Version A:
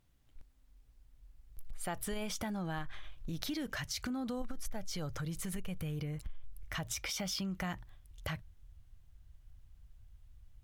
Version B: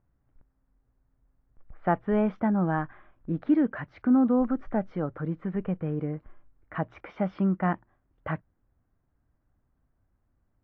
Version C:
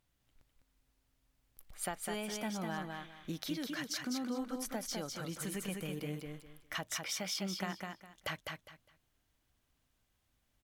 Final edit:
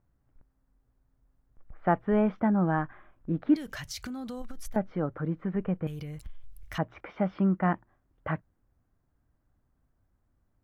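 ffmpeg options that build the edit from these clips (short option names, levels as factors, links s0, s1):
-filter_complex "[0:a]asplit=2[s0][s1];[1:a]asplit=3[s2][s3][s4];[s2]atrim=end=3.562[s5];[s0]atrim=start=3.558:end=4.762[s6];[s3]atrim=start=4.758:end=5.872[s7];[s1]atrim=start=5.868:end=6.782[s8];[s4]atrim=start=6.778[s9];[s5][s6]acrossfade=d=0.004:c1=hsin:c2=hsin[s10];[s10][s7]acrossfade=d=0.004:c1=hsin:c2=hsin[s11];[s11][s8]acrossfade=d=0.004:c1=hsin:c2=hsin[s12];[s12][s9]acrossfade=d=0.004:c1=hsin:c2=hsin"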